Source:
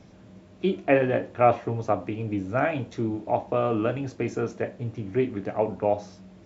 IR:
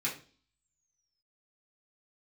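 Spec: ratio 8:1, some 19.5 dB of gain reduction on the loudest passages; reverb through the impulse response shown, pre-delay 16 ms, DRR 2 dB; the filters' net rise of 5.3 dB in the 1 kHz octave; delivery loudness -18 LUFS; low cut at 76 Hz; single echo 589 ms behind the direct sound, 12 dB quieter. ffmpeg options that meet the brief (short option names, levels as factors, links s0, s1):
-filter_complex "[0:a]highpass=76,equalizer=f=1000:t=o:g=8.5,acompressor=threshold=0.0316:ratio=8,aecho=1:1:589:0.251,asplit=2[s0][s1];[1:a]atrim=start_sample=2205,adelay=16[s2];[s1][s2]afir=irnorm=-1:irlink=0,volume=0.447[s3];[s0][s3]amix=inputs=2:normalize=0,volume=5.96"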